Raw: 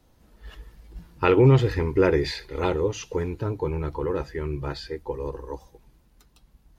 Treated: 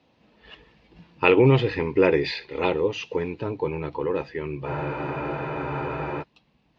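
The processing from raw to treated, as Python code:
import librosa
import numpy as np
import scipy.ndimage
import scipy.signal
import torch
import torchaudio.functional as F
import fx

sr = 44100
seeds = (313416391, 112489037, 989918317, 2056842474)

y = fx.cabinet(x, sr, low_hz=170.0, low_slope=12, high_hz=4500.0, hz=(360.0, 1400.0, 2600.0), db=(-3, -6, 7))
y = fx.spec_freeze(y, sr, seeds[0], at_s=4.7, hold_s=1.5)
y = F.gain(torch.from_numpy(y), 2.5).numpy()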